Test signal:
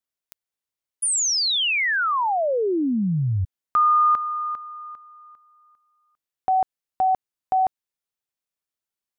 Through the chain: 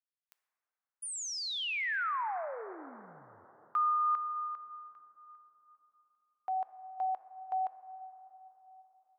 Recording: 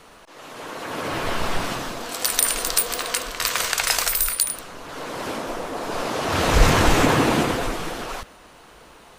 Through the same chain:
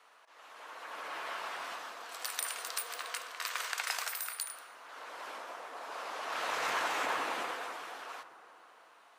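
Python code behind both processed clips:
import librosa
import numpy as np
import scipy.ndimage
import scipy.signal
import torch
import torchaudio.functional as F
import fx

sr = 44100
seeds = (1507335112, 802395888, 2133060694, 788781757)

y = scipy.signal.sosfilt(scipy.signal.butter(2, 960.0, 'highpass', fs=sr, output='sos'), x)
y = fx.high_shelf(y, sr, hz=2700.0, db=-10.5)
y = fx.rev_plate(y, sr, seeds[0], rt60_s=3.9, hf_ratio=0.25, predelay_ms=0, drr_db=11.0)
y = y * 10.0 ** (-8.0 / 20.0)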